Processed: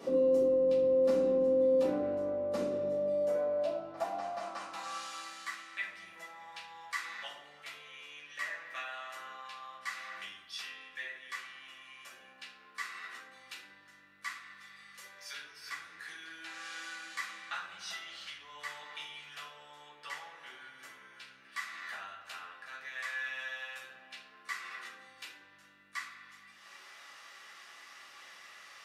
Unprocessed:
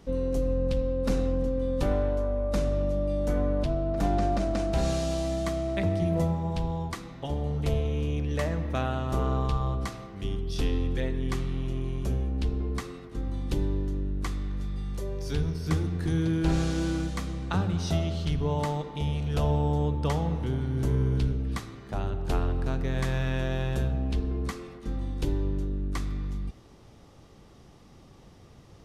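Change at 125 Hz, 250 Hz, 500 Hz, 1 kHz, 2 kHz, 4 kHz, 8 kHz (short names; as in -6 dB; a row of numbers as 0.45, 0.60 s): under -30 dB, -13.0 dB, -1.5 dB, -7.5 dB, +2.0 dB, -3.5 dB, -6.0 dB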